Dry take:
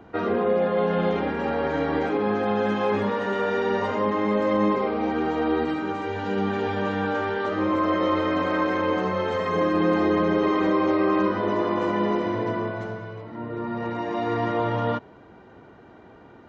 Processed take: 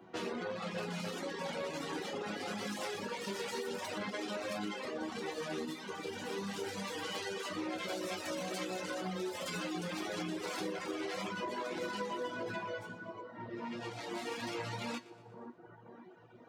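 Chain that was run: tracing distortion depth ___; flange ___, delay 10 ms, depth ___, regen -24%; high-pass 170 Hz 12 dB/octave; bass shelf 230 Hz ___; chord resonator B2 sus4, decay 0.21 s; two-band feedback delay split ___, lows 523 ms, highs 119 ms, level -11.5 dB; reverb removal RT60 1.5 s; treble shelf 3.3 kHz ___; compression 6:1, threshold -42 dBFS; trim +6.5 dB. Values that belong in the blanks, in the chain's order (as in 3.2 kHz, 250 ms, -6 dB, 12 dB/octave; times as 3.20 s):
0.49 ms, 1.5 Hz, 3 ms, +6.5 dB, 1.4 kHz, +7 dB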